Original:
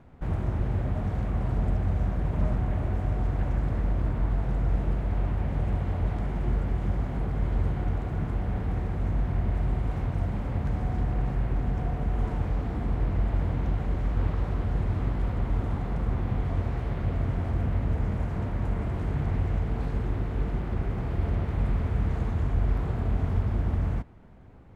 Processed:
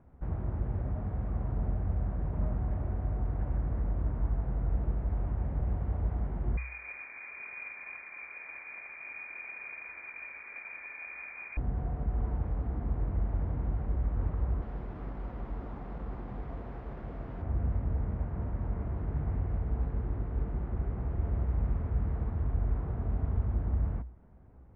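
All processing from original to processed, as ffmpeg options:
-filter_complex "[0:a]asettb=1/sr,asplit=3[s0][s1][s2];[s0]atrim=end=6.574[s3];[s1]atrim=start=6.57:end=11.57,asetpts=PTS-STARTPTS,afade=t=in:d=0.004:c=qsin,afade=t=out:st=4.996:d=0.004:c=qsin,highpass=f=60:p=1,acrusher=bits=4:mode=log:mix=0:aa=0.000001,lowpass=f=2100:t=q:w=0.5098,lowpass=f=2100:t=q:w=0.6013,lowpass=f=2100:t=q:w=0.9,lowpass=f=2100:t=q:w=2.563,afreqshift=-2500[s4];[s2]atrim=start=11.566[s5];[s3][s4]acrossfade=d=0.004:c1=hsin:c2=qsin[s6];[s6][s5]acrossfade=d=0.004:c1=qsin:c2=hsin,asettb=1/sr,asplit=3[s7][s8][s9];[s7]atrim=end=14.624[s10];[s8]atrim=start=14.62:end=17.42,asetpts=PTS-STARTPTS,afade=t=in:d=0.004:c=qsin,afade=t=out:st=2.796:d=0.004:c=qsin,equalizer=f=83:w=1.1:g=-14.5,bandreject=f=81.65:t=h:w=4,bandreject=f=163.3:t=h:w=4,bandreject=f=244.95:t=h:w=4,bandreject=f=326.6:t=h:w=4,bandreject=f=408.25:t=h:w=4,bandreject=f=489.9:t=h:w=4,bandreject=f=571.55:t=h:w=4,acrusher=bits=6:mix=0:aa=0.5[s11];[s9]atrim=start=17.416[s12];[s10][s11]acrossfade=d=0.004:c1=hsin:c2=qsin[s13];[s13][s12]acrossfade=d=0.004:c1=qsin:c2=hsin,lowpass=1500,equalizer=f=61:w=6.4:g=14.5,volume=0.447"

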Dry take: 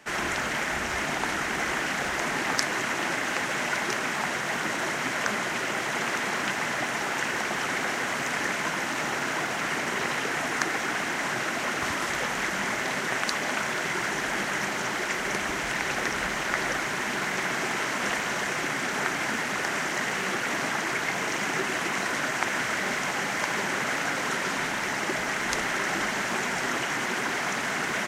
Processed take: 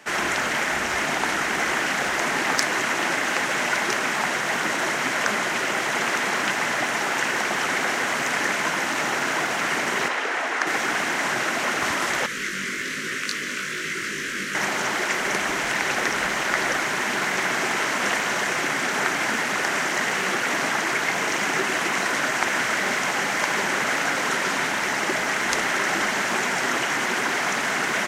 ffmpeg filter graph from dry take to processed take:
-filter_complex "[0:a]asettb=1/sr,asplit=3[s0][s1][s2];[s0]atrim=end=10.084[s3];[s1]atrim=start=10.08:end=10.67,asetpts=PTS-STARTPTS,afade=t=in:d=0.004:c=qsin,afade=t=out:st=0.586:d=0.004:c=qsin,highpass=370,aemphasis=mode=reproduction:type=50kf[s4];[s2]atrim=start=10.666[s5];[s3][s4]acrossfade=d=0.004:c1=hsin:c2=qsin[s6];[s6][s5]acrossfade=d=0.004:c1=qsin:c2=hsin,asettb=1/sr,asplit=3[s7][s8][s9];[s7]atrim=end=12.264[s10];[s8]atrim=start=12.26:end=14.55,asetpts=PTS-STARTPTS,afade=t=in:d=0.004:c=qsin,afade=t=out:st=2.286:d=0.004:c=qsin,flanger=delay=18.5:depth=2.5:speed=1.2,asuperstop=centerf=790:order=4:qfactor=0.8[s11];[s9]atrim=start=14.546[s12];[s10][s11]acrossfade=d=0.004:c1=hsin:c2=qsin[s13];[s13][s12]acrossfade=d=0.004:c1=qsin:c2=hsin,lowshelf=f=130:g=-10,acontrast=52,volume=0.891"

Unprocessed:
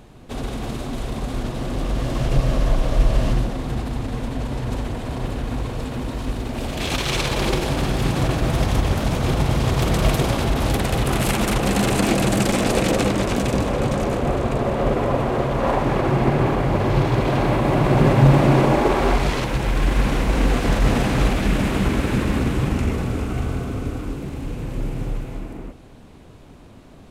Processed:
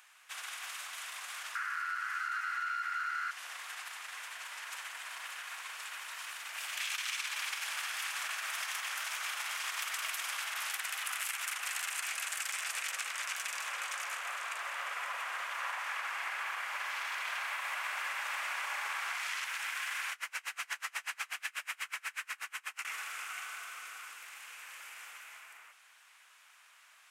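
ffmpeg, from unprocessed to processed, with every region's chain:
-filter_complex "[0:a]asettb=1/sr,asplit=3[s0][s1][s2];[s0]atrim=end=1.554[s3];[s1]atrim=start=1.55:end=3.31,asetpts=PTS-STARTPTS,afade=t=in:d=0.004:c=qsin,afade=t=out:st=1.756:d=0.004:c=qsin,aeval=exprs='0.224*(abs(mod(val(0)/0.224+3,4)-2)-1)':c=same,aeval=exprs='val(0)*sin(2*PI*1400*n/s)':c=same,aeval=exprs='(tanh(7.08*val(0)+0.2)-tanh(0.2))/7.08':c=same[s4];[s2]atrim=start=3.306[s5];[s3][s4]acrossfade=d=0.004:c1=hsin:c2=qsin[s6];[s6][s5]acrossfade=d=0.004:c1=qsin:c2=hsin,asettb=1/sr,asplit=3[s7][s8][s9];[s7]atrim=end=20.124[s10];[s8]atrim=start=20.12:end=22.85,asetpts=PTS-STARTPTS,afade=t=in:d=0.004:c=qsin,afade=t=out:st=2.726:d=0.004:c=qsin,bandreject=f=3500:w=23,asplit=2[s11][s12];[s12]adelay=30,volume=0.668[s13];[s11][s13]amix=inputs=2:normalize=0,atrim=end_sample=120393,aeval=exprs='val(0)*pow(10,-34*(0.5-0.5*cos(2*PI*8.2*n/s))/20)':c=same[s14];[s9]atrim=start=22.846[s15];[s10][s14]acrossfade=d=0.004:c1=hsin:c2=qsin[s16];[s16][s15]acrossfade=d=0.004:c1=qsin:c2=hsin,highpass=f=1400:w=0.5412,highpass=f=1400:w=1.3066,equalizer=f=4000:w=2.1:g=-7.5,acompressor=threshold=0.02:ratio=6"

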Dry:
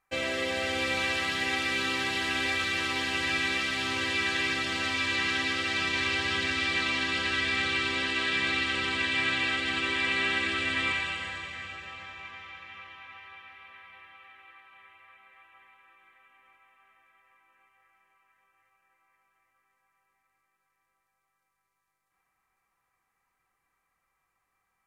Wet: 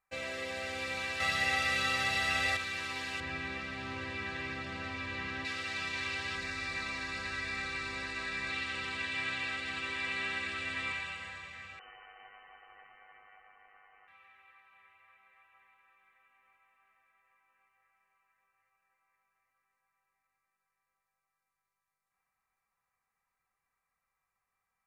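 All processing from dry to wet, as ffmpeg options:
-filter_complex "[0:a]asettb=1/sr,asplit=3[s0][s1][s2];[s0]atrim=end=1.204[s3];[s1]atrim=start=1.2:end=2.57,asetpts=PTS-STARTPTS,afade=t=in:d=0.004:c=qsin,afade=t=out:st=1.366:d=0.004:c=qsin,aecho=1:1:1.5:0.56,atrim=end_sample=60417,acontrast=36[s4];[s2]atrim=start=2.566[s5];[s3][s4]acrossfade=d=0.004:c1=hsin:c2=qsin[s6];[s6][s5]acrossfade=d=0.004:c1=qsin:c2=hsin,asettb=1/sr,asplit=3[s7][s8][s9];[s7]atrim=end=3.204[s10];[s8]atrim=start=3.2:end=5.45,asetpts=PTS-STARTPTS,afade=t=in:d=0.004:c=qsin,afade=t=out:st=2.246:d=0.004:c=qsin,lowpass=f=1900:p=1,lowshelf=f=440:g=6[s11];[s9]atrim=start=5.446[s12];[s10][s11]acrossfade=d=0.004:c1=hsin:c2=qsin[s13];[s13][s12]acrossfade=d=0.004:c1=qsin:c2=hsin,asettb=1/sr,asplit=3[s14][s15][s16];[s14]atrim=end=6.354[s17];[s15]atrim=start=6.35:end=8.5,asetpts=PTS-STARTPTS,afade=t=in:d=0.004:c=qsin,afade=t=out:st=2.146:d=0.004:c=qsin,equalizer=f=3100:t=o:w=0.31:g=-10,aeval=exprs='val(0)+0.00398*(sin(2*PI*50*n/s)+sin(2*PI*2*50*n/s)/2+sin(2*PI*3*50*n/s)/3+sin(2*PI*4*50*n/s)/4+sin(2*PI*5*50*n/s)/5)':c=same[s18];[s16]atrim=start=8.496[s19];[s17][s18]acrossfade=d=0.004:c1=hsin:c2=qsin[s20];[s20][s19]acrossfade=d=0.004:c1=qsin:c2=hsin,asettb=1/sr,asplit=3[s21][s22][s23];[s21]atrim=end=11.794[s24];[s22]atrim=start=11.79:end=14.08,asetpts=PTS-STARTPTS,afade=t=in:d=0.004:c=qsin,afade=t=out:st=2.286:d=0.004:c=qsin,equalizer=f=74:t=o:w=0.39:g=14,tremolo=f=100:d=0.571,lowpass=f=2600:t=q:w=0.5098,lowpass=f=2600:t=q:w=0.6013,lowpass=f=2600:t=q:w=0.9,lowpass=f=2600:t=q:w=2.563,afreqshift=-3100[s25];[s23]atrim=start=14.076[s26];[s24][s25]acrossfade=d=0.004:c1=hsin:c2=qsin[s27];[s27][s26]acrossfade=d=0.004:c1=qsin:c2=hsin,equalizer=f=320:w=4:g=-10,bandreject=f=3200:w=9.6,volume=0.422"

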